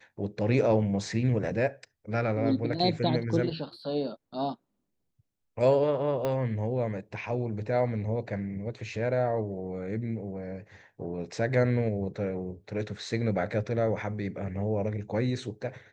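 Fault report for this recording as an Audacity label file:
6.250000	6.250000	click −17 dBFS

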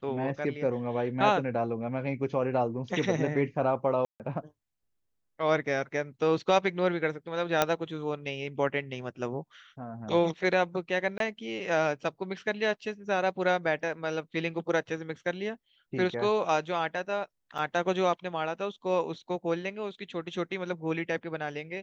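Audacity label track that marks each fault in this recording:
4.050000	4.200000	drop-out 148 ms
7.620000	7.620000	click −8 dBFS
11.180000	11.200000	drop-out 22 ms
17.580000	17.590000	drop-out 5.6 ms

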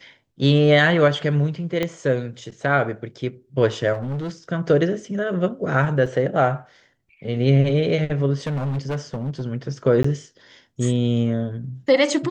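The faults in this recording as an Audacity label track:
1.830000	1.830000	click −10 dBFS
3.930000	4.300000	clipping −24 dBFS
6.060000	6.060000	drop-out 3.8 ms
8.460000	9.420000	clipping −21.5 dBFS
10.030000	10.040000	drop-out 14 ms

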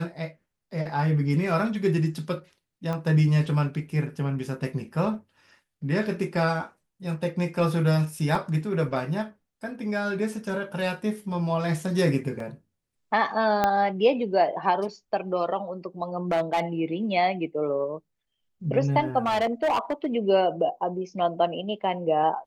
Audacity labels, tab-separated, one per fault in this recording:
2.930000	2.930000	click −19 dBFS
8.350000	8.350000	drop-out 2.4 ms
12.400000	12.400000	drop-out 2.8 ms
13.640000	13.640000	click −9 dBFS
16.170000	16.600000	clipping −19 dBFS
19.260000	20.060000	clipping −20 dBFS

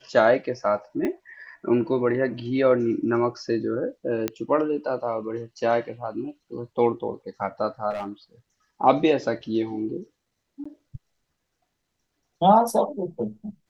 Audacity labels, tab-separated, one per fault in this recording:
1.050000	1.050000	click −16 dBFS
4.280000	4.280000	click −11 dBFS
7.900000	8.090000	clipping −27 dBFS
10.640000	10.650000	drop-out 15 ms

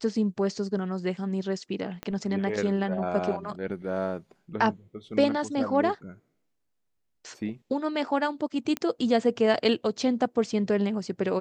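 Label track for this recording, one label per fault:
2.030000	2.030000	click −20 dBFS
8.770000	8.770000	click −15 dBFS

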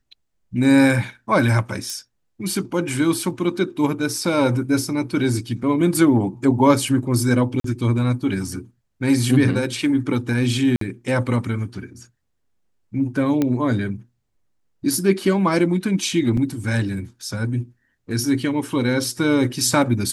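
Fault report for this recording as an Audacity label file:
1.900000	1.900000	click −15 dBFS
7.600000	7.640000	drop-out 43 ms
10.760000	10.810000	drop-out 53 ms
13.420000	13.420000	click −8 dBFS
16.370000	16.370000	drop-out 4.2 ms

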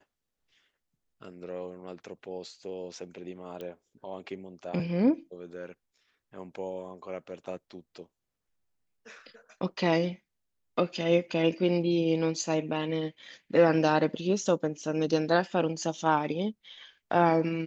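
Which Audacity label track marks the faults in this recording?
3.610000	3.610000	click −27 dBFS

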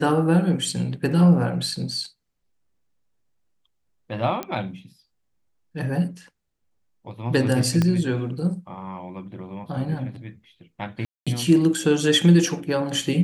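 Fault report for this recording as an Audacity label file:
4.430000	4.430000	click −14 dBFS
7.820000	7.820000	click −10 dBFS
11.050000	11.270000	drop-out 216 ms

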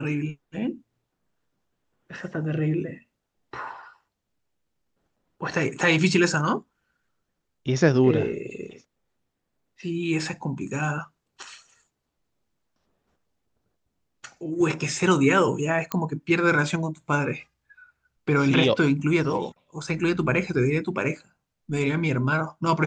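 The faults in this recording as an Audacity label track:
15.920000	15.920000	click −10 dBFS

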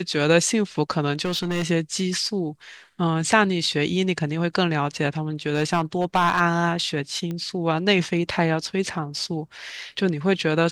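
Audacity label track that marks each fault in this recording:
1.250000	1.650000	clipping −21 dBFS
5.490000	6.410000	clipping −13.5 dBFS
7.310000	7.310000	click −19 dBFS

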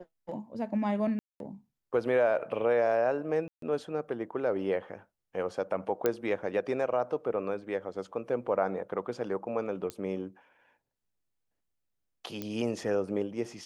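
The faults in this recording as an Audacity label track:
1.190000	1.400000	drop-out 212 ms
3.480000	3.620000	drop-out 143 ms
6.060000	6.060000	click −13 dBFS
9.900000	9.900000	click −21 dBFS
12.420000	12.420000	click −21 dBFS

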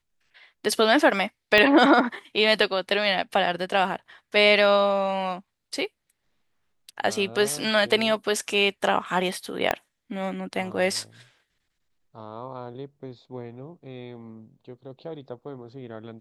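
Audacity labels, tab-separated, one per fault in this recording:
1.580000	1.580000	click −7 dBFS
9.710000	9.710000	click −9 dBFS

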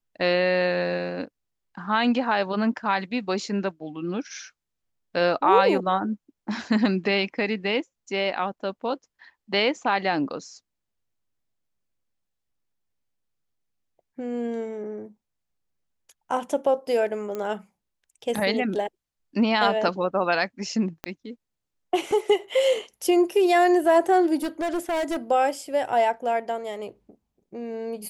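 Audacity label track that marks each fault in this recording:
17.350000	17.350000	click −19 dBFS
21.040000	21.040000	click −16 dBFS
24.430000	25.170000	clipping −23 dBFS

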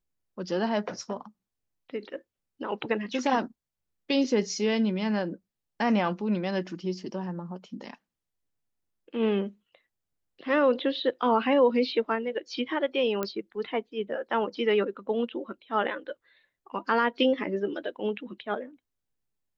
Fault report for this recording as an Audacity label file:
13.230000	13.230000	click −15 dBFS

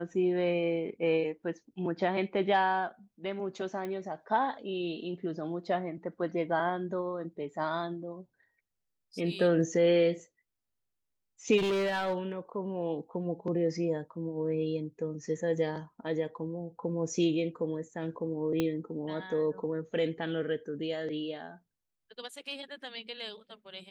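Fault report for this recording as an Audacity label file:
3.850000	3.850000	click −25 dBFS
11.570000	12.320000	clipping −26.5 dBFS
18.600000	18.600000	click −16 dBFS

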